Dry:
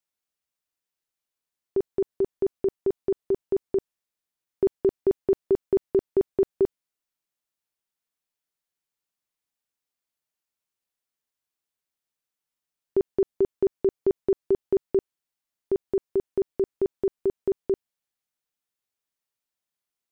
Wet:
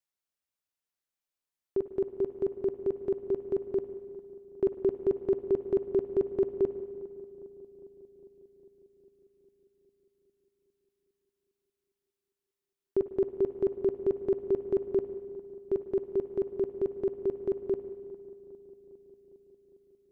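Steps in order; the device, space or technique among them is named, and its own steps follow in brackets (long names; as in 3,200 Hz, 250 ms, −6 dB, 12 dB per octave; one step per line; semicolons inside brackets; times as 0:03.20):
dub delay into a spring reverb (feedback echo with a low-pass in the loop 405 ms, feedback 70%, low-pass 1,200 Hz, level −17.5 dB; spring reverb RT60 1.8 s, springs 50/57 ms, chirp 70 ms, DRR 11 dB)
level −4.5 dB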